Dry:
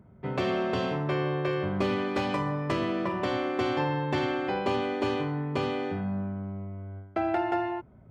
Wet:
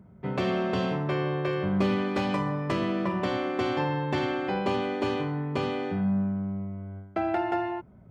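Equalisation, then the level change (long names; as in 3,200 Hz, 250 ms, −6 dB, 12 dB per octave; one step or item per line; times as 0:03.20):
parametric band 190 Hz +7 dB 0.24 octaves
0.0 dB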